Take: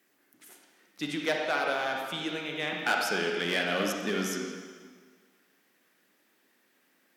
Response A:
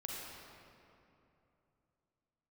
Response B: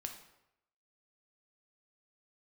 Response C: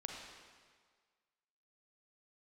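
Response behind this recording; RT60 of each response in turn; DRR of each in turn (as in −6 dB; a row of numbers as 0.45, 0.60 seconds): C; 2.9, 0.85, 1.7 seconds; −3.5, 3.5, 0.0 decibels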